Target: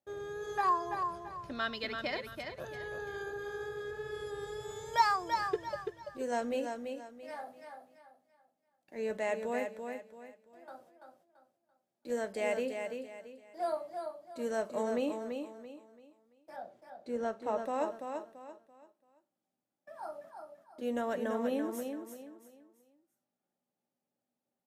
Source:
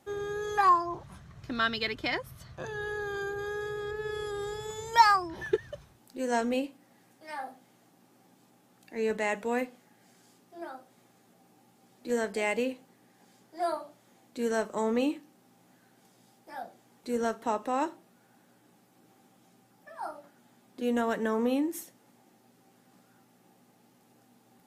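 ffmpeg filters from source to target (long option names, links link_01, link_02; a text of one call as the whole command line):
ffmpeg -i in.wav -filter_complex "[0:a]asettb=1/sr,asplit=3[link_01][link_02][link_03];[link_01]atrim=end=16.564[link_04];[link_02]atrim=start=16.56:end=17.58,asetpts=PTS-STARTPTS,afade=type=in:duration=0.004:curve=qsin,afade=type=out:start_time=1.016:duration=0.004:curve=qsin,aemphasis=mode=reproduction:type=50fm[link_05];[link_03]atrim=start=17.576[link_06];[link_04][link_05]acrossfade=duration=0.004:curve1=hsin:curve2=qsin[link_07];[link_07][link_06]acrossfade=duration=0.004:curve1=qsin:curve2=hsin,agate=range=-22dB:threshold=-55dB:ratio=16:detection=peak,equalizer=frequency=590:width_type=o:width=0.31:gain=11,asettb=1/sr,asplit=3[link_08][link_09][link_10];[link_08]atrim=end=9.664[link_11];[link_09]atrim=start=9.66:end=10.68,asetpts=PTS-STARTPTS,afade=type=in:duration=0.004:curve=qsin,afade=type=out:start_time=1.016:duration=0.004:curve=qsin,acompressor=threshold=-53dB:ratio=3[link_12];[link_10]atrim=start=10.676[link_13];[link_11][link_12]acrossfade=duration=0.004:curve1=hsin:curve2=qsin[link_14];[link_14][link_13]acrossfade=duration=0.004:curve1=qsin:curve2=hsin,aecho=1:1:337|674|1011|1348:0.501|0.16|0.0513|0.0164,volume=-7.5dB" out.wav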